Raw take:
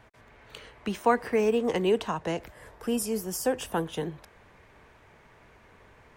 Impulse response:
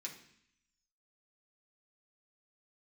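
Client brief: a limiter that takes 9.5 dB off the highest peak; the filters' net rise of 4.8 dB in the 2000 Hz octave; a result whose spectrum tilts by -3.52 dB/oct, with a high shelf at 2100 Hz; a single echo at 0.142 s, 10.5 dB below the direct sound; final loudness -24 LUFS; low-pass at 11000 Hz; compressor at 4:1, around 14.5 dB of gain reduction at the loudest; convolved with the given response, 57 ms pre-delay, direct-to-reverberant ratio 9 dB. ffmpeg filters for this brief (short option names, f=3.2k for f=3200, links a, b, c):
-filter_complex "[0:a]lowpass=11k,equalizer=f=2k:t=o:g=3.5,highshelf=f=2.1k:g=5,acompressor=threshold=-35dB:ratio=4,alimiter=level_in=7dB:limit=-24dB:level=0:latency=1,volume=-7dB,aecho=1:1:142:0.299,asplit=2[a][b];[1:a]atrim=start_sample=2205,adelay=57[c];[b][c]afir=irnorm=-1:irlink=0,volume=-6.5dB[d];[a][d]amix=inputs=2:normalize=0,volume=16.5dB"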